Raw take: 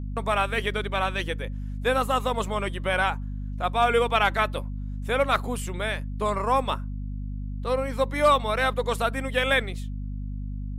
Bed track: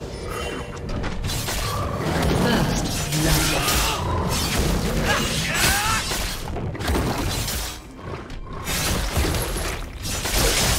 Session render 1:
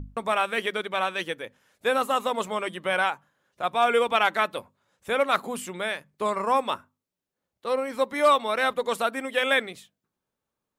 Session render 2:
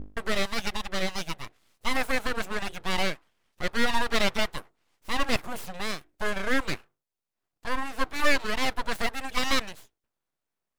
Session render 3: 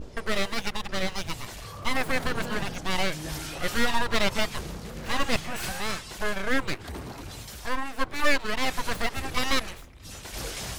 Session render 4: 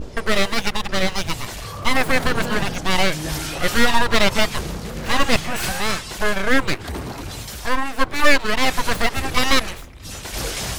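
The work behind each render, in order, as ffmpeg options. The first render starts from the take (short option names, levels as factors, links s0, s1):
-af "bandreject=f=50:t=h:w=6,bandreject=f=100:t=h:w=6,bandreject=f=150:t=h:w=6,bandreject=f=200:t=h:w=6,bandreject=f=250:t=h:w=6"
-af "aeval=exprs='abs(val(0))':c=same"
-filter_complex "[1:a]volume=0.168[s0];[0:a][s0]amix=inputs=2:normalize=0"
-af "volume=2.66,alimiter=limit=0.891:level=0:latency=1"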